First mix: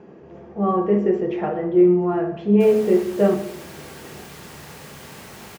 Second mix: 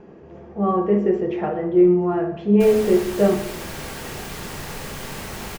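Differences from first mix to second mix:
second sound +7.0 dB; master: remove HPF 90 Hz 12 dB/oct

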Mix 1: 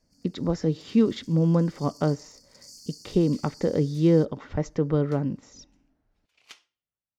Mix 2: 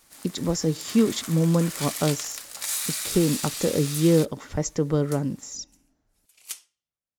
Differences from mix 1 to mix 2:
first sound: remove brick-wall FIR band-stop 290–4300 Hz; master: remove air absorption 230 m

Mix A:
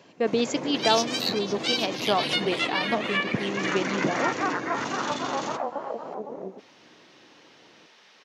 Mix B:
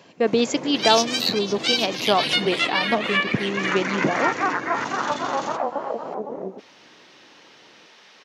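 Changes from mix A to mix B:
speech +4.5 dB; second sound +5.0 dB

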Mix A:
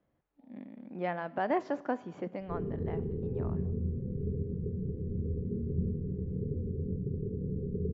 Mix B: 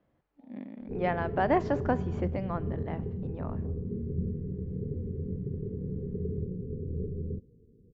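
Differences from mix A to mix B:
speech +4.5 dB; background: entry -1.60 s

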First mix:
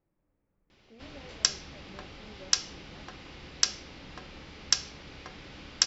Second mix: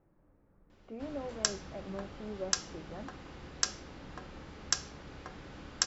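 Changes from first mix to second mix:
speech +11.0 dB; master: add band shelf 3400 Hz -8 dB

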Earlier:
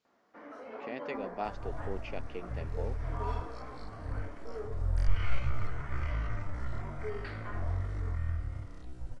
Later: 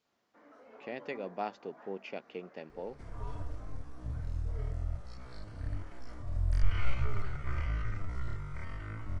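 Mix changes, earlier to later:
first sound -10.5 dB; second sound: entry +1.55 s

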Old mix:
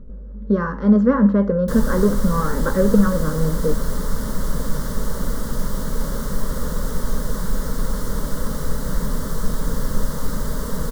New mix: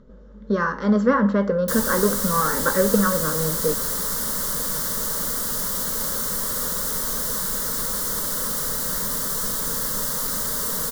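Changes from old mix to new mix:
speech: send on; master: add tilt +3.5 dB/oct

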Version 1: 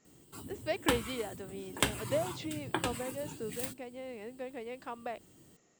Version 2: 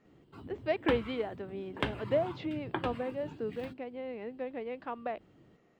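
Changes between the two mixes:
speech +4.5 dB; master: add air absorption 330 m

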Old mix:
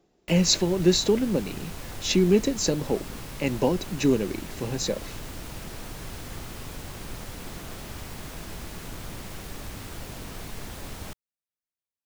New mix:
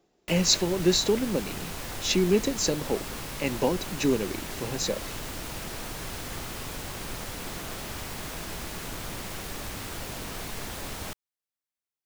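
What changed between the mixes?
background +4.5 dB; master: add low shelf 300 Hz -6 dB

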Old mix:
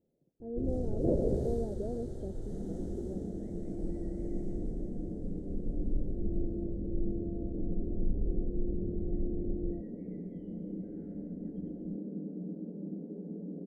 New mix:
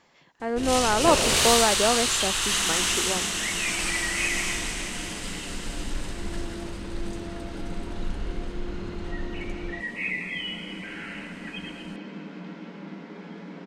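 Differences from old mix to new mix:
speech +9.5 dB; master: remove inverse Chebyshev low-pass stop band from 1000 Hz, stop band 40 dB

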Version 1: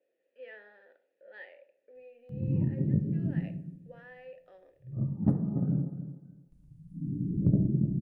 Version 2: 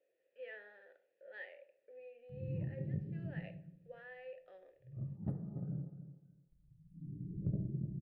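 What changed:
background -9.5 dB; master: add fifteen-band EQ 250 Hz -11 dB, 1000 Hz -6 dB, 6300 Hz -11 dB

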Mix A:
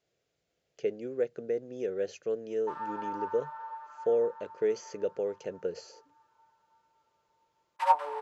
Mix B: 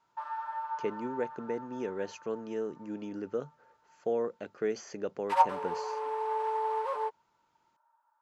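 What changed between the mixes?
speech: add ten-band EQ 250 Hz +7 dB, 500 Hz -9 dB, 1000 Hz +12 dB; background: entry -2.50 s

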